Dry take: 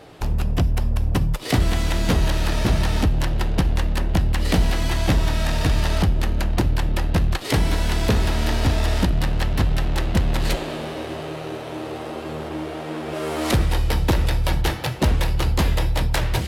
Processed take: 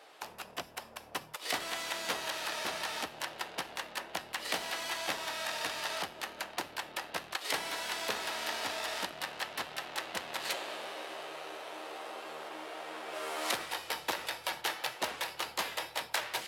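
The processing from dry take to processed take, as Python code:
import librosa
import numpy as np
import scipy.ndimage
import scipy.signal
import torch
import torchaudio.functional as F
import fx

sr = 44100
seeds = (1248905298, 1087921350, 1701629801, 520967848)

y = scipy.signal.sosfilt(scipy.signal.butter(2, 740.0, 'highpass', fs=sr, output='sos'), x)
y = y * librosa.db_to_amplitude(-6.5)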